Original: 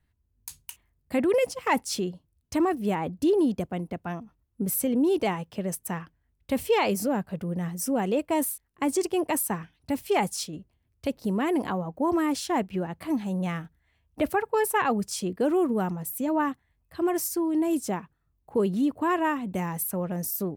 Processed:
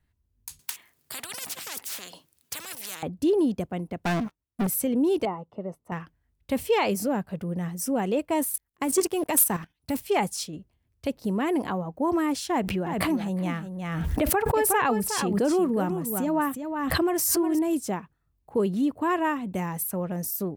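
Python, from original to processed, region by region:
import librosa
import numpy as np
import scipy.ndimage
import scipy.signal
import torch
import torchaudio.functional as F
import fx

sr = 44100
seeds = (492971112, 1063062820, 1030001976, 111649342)

y = fx.chain(x, sr, fx.highpass(hz=230.0, slope=12),
    fx.tilt_shelf(db=-5.5, hz=1100.0),
    fx.spectral_comp(ratio=10.0), at=(0.59, 3.03))
y = fx.chain(y, sr, fx.low_shelf(hz=110.0, db=-10.0),
    fx.leveller(passes=5), at=(4.05, 4.67))
y = fx.chain(y, sr, fx.savgol(points=65),
    fx.low_shelf(hz=190.0, db=-11.5), at=(5.25, 5.92))
y = fx.chain(y, sr, fx.high_shelf(hz=8700.0, db=11.5),
    fx.level_steps(step_db=11),
    fx.leveller(passes=2), at=(8.54, 10.0))
y = fx.chain(y, sr, fx.echo_single(ms=362, db=-9.0),
    fx.pre_swell(db_per_s=28.0), at=(12.5, 17.59))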